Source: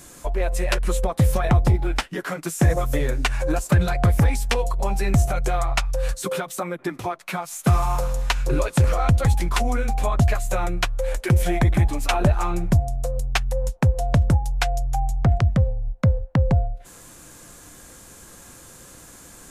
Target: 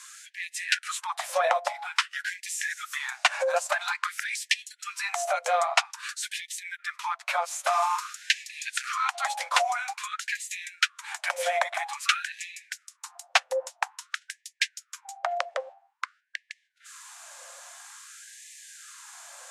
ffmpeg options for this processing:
ffmpeg -i in.wav -filter_complex "[0:a]lowpass=7900,bandreject=frequency=50:width_type=h:width=6,bandreject=frequency=100:width_type=h:width=6,bandreject=frequency=150:width_type=h:width=6,acrossover=split=160|830|2900[link_01][link_02][link_03][link_04];[link_01]alimiter=limit=-17.5dB:level=0:latency=1:release=258[link_05];[link_05][link_02][link_03][link_04]amix=inputs=4:normalize=0,afftfilt=real='re*gte(b*sr/1024,500*pow(1700/500,0.5+0.5*sin(2*PI*0.5*pts/sr)))':imag='im*gte(b*sr/1024,500*pow(1700/500,0.5+0.5*sin(2*PI*0.5*pts/sr)))':win_size=1024:overlap=0.75,volume=2.5dB" out.wav

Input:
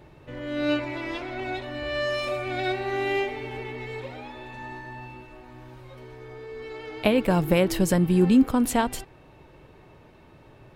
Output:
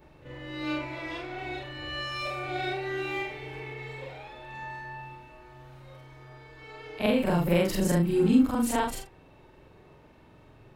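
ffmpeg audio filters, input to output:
ffmpeg -i in.wav -af "afftfilt=real='re':imag='-im':win_size=4096:overlap=0.75,volume=1dB" out.wav

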